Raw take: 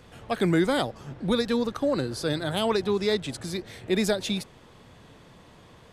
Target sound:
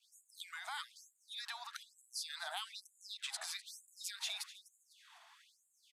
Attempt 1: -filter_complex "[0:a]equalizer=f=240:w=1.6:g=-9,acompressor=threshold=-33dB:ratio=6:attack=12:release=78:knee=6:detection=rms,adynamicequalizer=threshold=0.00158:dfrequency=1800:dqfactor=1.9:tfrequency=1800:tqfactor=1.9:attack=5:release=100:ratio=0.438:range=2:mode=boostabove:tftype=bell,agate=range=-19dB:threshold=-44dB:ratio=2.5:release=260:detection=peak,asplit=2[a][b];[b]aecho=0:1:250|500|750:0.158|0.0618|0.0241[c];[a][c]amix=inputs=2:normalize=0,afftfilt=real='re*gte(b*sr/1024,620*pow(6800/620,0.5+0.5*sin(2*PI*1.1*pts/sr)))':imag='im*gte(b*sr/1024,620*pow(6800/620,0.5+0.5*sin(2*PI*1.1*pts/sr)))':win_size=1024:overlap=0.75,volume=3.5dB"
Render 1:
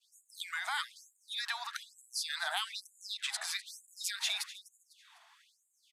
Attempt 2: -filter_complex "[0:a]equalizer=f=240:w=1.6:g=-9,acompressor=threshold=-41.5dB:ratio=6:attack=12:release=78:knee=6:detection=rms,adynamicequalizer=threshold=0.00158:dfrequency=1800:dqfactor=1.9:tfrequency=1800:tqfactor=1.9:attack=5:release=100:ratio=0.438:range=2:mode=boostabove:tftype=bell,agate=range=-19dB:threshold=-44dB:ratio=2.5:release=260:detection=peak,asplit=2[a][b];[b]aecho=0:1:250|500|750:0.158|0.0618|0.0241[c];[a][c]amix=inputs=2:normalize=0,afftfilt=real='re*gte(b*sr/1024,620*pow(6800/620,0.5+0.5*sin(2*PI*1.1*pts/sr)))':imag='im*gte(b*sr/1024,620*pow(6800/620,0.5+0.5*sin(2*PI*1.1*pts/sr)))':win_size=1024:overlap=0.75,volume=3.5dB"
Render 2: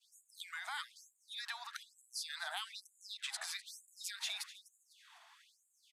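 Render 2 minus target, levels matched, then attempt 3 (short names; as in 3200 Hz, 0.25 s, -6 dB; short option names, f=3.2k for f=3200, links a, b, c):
500 Hz band -2.5 dB
-filter_complex "[0:a]equalizer=f=240:w=1.6:g=-9,acompressor=threshold=-41.5dB:ratio=6:attack=12:release=78:knee=6:detection=rms,adynamicequalizer=threshold=0.00158:dfrequency=510:dqfactor=1.9:tfrequency=510:tqfactor=1.9:attack=5:release=100:ratio=0.438:range=2:mode=boostabove:tftype=bell,agate=range=-19dB:threshold=-44dB:ratio=2.5:release=260:detection=peak,asplit=2[a][b];[b]aecho=0:1:250|500|750:0.158|0.0618|0.0241[c];[a][c]amix=inputs=2:normalize=0,afftfilt=real='re*gte(b*sr/1024,620*pow(6800/620,0.5+0.5*sin(2*PI*1.1*pts/sr)))':imag='im*gte(b*sr/1024,620*pow(6800/620,0.5+0.5*sin(2*PI*1.1*pts/sr)))':win_size=1024:overlap=0.75,volume=3.5dB"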